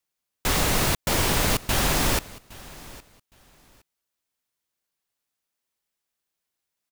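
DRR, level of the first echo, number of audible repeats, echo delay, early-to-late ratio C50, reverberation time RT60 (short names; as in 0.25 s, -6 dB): none, -20.5 dB, 2, 0.814 s, none, none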